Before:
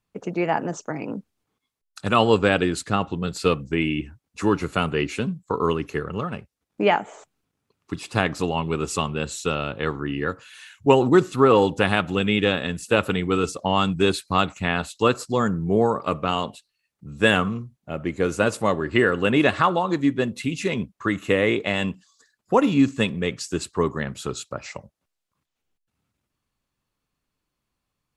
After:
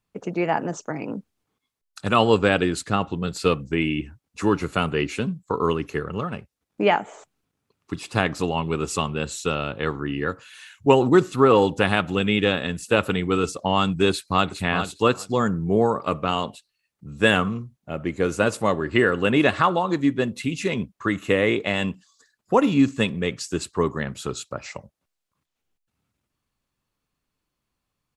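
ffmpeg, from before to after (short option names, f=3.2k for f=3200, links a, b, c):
-filter_complex "[0:a]asplit=2[a][b];[b]afade=t=in:st=14.1:d=0.01,afade=t=out:st=14.5:d=0.01,aecho=0:1:410|820:0.375837|0.0563756[c];[a][c]amix=inputs=2:normalize=0"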